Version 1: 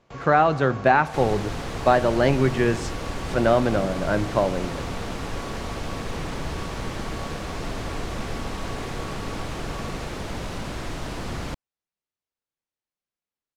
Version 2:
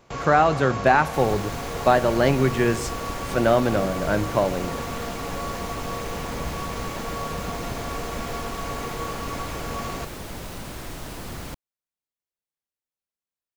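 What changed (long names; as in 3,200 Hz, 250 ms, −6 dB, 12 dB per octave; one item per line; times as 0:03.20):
first sound +7.5 dB
second sound −4.5 dB
master: remove high-frequency loss of the air 61 metres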